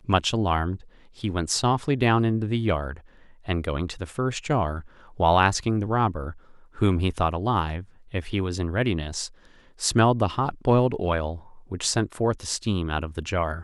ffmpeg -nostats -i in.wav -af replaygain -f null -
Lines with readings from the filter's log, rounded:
track_gain = +5.0 dB
track_peak = 0.424